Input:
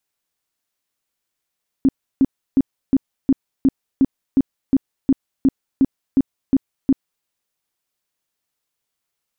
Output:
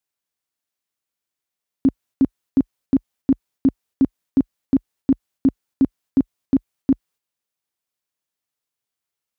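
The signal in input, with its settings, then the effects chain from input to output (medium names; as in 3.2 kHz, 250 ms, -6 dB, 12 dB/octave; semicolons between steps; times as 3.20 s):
tone bursts 269 Hz, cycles 10, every 0.36 s, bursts 15, -9.5 dBFS
high-pass 42 Hz 24 dB/octave; gate -48 dBFS, range -6 dB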